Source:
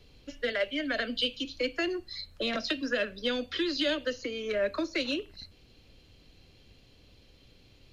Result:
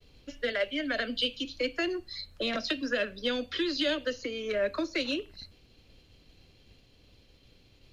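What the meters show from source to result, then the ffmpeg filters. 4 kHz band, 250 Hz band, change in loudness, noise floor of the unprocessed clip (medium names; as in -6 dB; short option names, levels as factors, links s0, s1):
0.0 dB, 0.0 dB, 0.0 dB, -59 dBFS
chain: -af "agate=range=0.0224:threshold=0.00178:ratio=3:detection=peak"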